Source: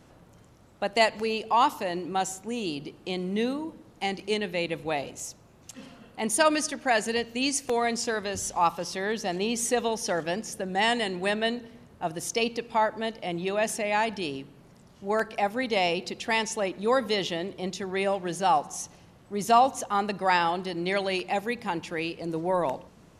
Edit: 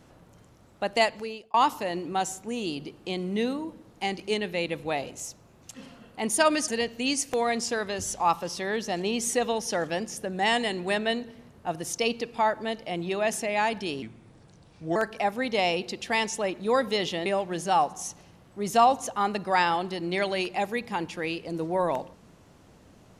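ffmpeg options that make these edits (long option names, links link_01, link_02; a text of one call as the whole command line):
ffmpeg -i in.wav -filter_complex "[0:a]asplit=6[link_01][link_02][link_03][link_04][link_05][link_06];[link_01]atrim=end=1.54,asetpts=PTS-STARTPTS,afade=type=out:start_time=0.96:duration=0.58[link_07];[link_02]atrim=start=1.54:end=6.682,asetpts=PTS-STARTPTS,afade=type=in:duration=0.004:curve=hsin[link_08];[link_03]atrim=start=7.038:end=14.384[link_09];[link_04]atrim=start=14.38:end=15.14,asetpts=PTS-STARTPTS,asetrate=35721,aresample=44100[link_10];[link_05]atrim=start=15.136:end=17.442[link_11];[link_06]atrim=start=17.998[link_12];[link_07][link_08]concat=n=2:v=0:a=1[link_13];[link_13][link_09]acrossfade=duration=0.004:curve1=hsin:curve2=hsin[link_14];[link_14][link_10]acrossfade=duration=0.004:curve1=hsin:curve2=hsin[link_15];[link_15][link_11]acrossfade=duration=0.004:curve1=hsin:curve2=hsin[link_16];[link_16][link_12]acrossfade=duration=0.004:curve1=hsin:curve2=hsin" out.wav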